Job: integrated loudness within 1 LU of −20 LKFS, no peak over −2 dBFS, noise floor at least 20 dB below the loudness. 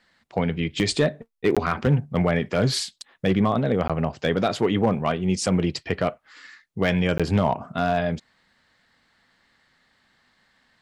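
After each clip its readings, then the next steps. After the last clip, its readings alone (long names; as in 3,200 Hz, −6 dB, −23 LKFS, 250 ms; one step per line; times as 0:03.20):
share of clipped samples 0.2%; peaks flattened at −11.5 dBFS; number of dropouts 3; longest dropout 16 ms; integrated loudness −24.0 LKFS; sample peak −11.5 dBFS; target loudness −20.0 LKFS
→ clipped peaks rebuilt −11.5 dBFS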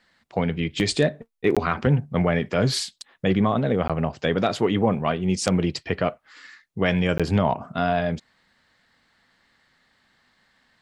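share of clipped samples 0.0%; number of dropouts 3; longest dropout 16 ms
→ repair the gap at 0:01.55/0:03.88/0:07.18, 16 ms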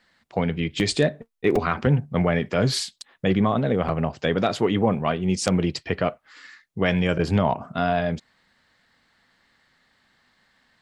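number of dropouts 0; integrated loudness −23.5 LKFS; sample peak −2.5 dBFS; target loudness −20.0 LKFS
→ level +3.5 dB
brickwall limiter −2 dBFS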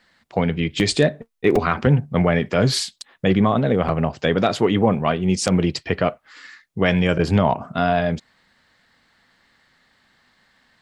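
integrated loudness −20.0 LKFS; sample peak −2.0 dBFS; background noise floor −64 dBFS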